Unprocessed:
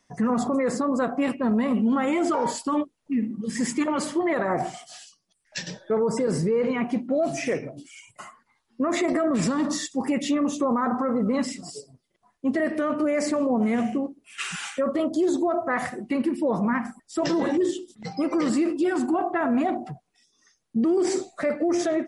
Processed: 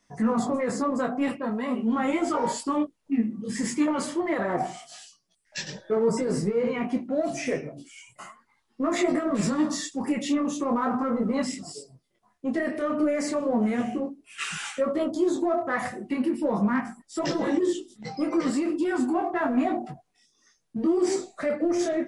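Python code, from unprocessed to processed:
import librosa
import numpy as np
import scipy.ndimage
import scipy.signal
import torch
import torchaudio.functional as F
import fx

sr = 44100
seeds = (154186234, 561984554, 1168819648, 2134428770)

p1 = fx.highpass(x, sr, hz=360.0, slope=6, at=(1.37, 1.86), fade=0.02)
p2 = np.clip(p1, -10.0 ** (-21.5 / 20.0), 10.0 ** (-21.5 / 20.0))
p3 = p1 + (p2 * 10.0 ** (-9.5 / 20.0))
y = fx.detune_double(p3, sr, cents=12)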